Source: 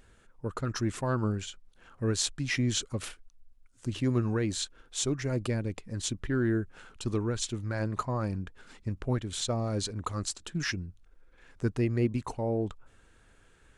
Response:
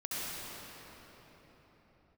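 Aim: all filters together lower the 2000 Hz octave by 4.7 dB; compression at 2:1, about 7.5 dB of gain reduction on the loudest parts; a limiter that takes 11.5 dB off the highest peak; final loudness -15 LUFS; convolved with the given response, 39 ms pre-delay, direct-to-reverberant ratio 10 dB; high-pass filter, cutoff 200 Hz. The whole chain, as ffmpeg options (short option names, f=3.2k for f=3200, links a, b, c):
-filter_complex "[0:a]highpass=200,equalizer=f=2k:t=o:g=-6,acompressor=threshold=-39dB:ratio=2,alimiter=level_in=8dB:limit=-24dB:level=0:latency=1,volume=-8dB,asplit=2[a][b];[1:a]atrim=start_sample=2205,adelay=39[c];[b][c]afir=irnorm=-1:irlink=0,volume=-15dB[d];[a][d]amix=inputs=2:normalize=0,volume=28dB"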